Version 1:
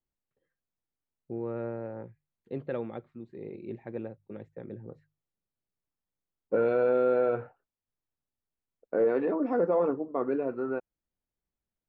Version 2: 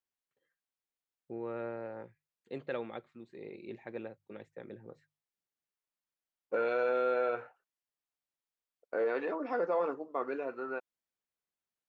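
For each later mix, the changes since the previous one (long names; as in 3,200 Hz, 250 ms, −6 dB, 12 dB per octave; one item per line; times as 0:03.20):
second voice: add low-shelf EQ 330 Hz −8 dB
master: add spectral tilt +3.5 dB per octave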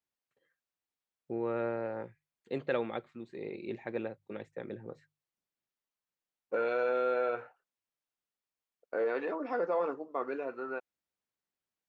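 first voice +5.5 dB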